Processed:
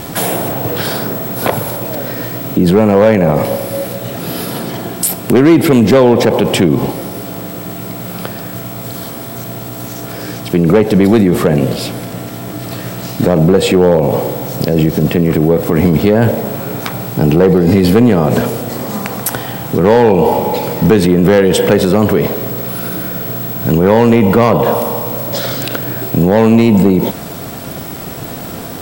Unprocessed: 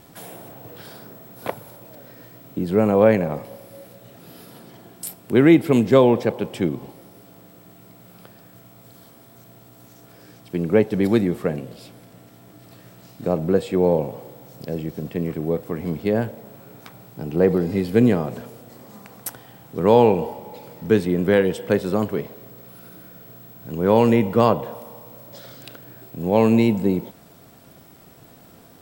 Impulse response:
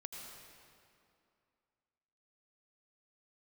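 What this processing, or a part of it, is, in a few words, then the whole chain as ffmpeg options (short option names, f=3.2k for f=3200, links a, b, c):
loud club master: -af "acompressor=threshold=-19dB:ratio=2,asoftclip=type=hard:threshold=-14.5dB,alimiter=level_in=24dB:limit=-1dB:release=50:level=0:latency=1,volume=-1dB"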